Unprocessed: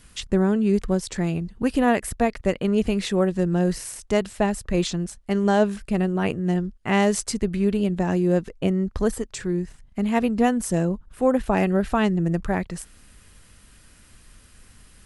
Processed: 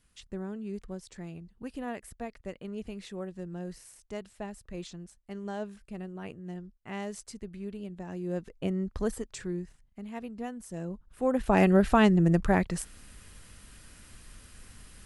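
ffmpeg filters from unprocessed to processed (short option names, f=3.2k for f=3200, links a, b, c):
-af "volume=10dB,afade=t=in:st=8.09:d=0.67:silence=0.334965,afade=t=out:st=9.4:d=0.61:silence=0.316228,afade=t=in:st=10.7:d=0.64:silence=0.281838,afade=t=in:st=11.34:d=0.31:silence=0.446684"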